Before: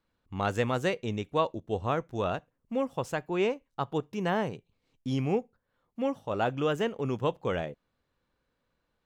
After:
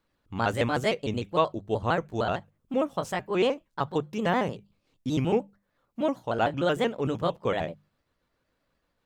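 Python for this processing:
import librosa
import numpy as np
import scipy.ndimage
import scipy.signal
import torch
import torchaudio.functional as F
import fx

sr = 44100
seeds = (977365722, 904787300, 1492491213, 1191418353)

y = fx.pitch_trill(x, sr, semitones=2.5, every_ms=76)
y = fx.hum_notches(y, sr, base_hz=50, count=4)
y = y * 10.0 ** (3.5 / 20.0)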